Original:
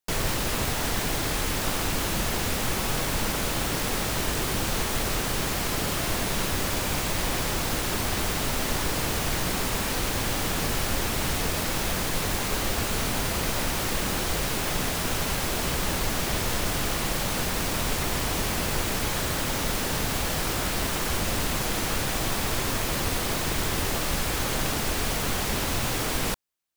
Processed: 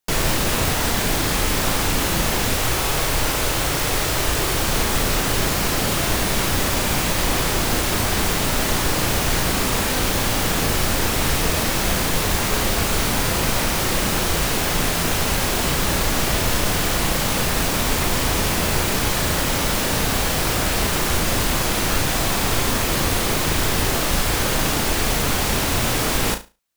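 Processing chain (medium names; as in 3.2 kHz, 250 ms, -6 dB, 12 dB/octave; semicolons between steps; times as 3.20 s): 2.54–4.64 s: peaking EQ 210 Hz -10.5 dB 0.47 oct; flutter echo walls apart 6.1 m, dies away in 0.27 s; trim +6 dB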